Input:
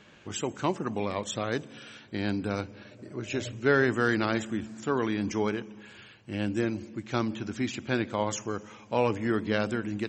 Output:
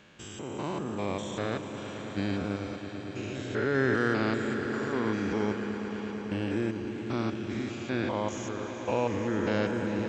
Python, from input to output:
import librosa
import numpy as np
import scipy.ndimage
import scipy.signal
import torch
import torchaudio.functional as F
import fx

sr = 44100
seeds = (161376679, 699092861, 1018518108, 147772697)

y = fx.spec_steps(x, sr, hold_ms=200)
y = fx.echo_swell(y, sr, ms=111, loudest=5, wet_db=-14.0)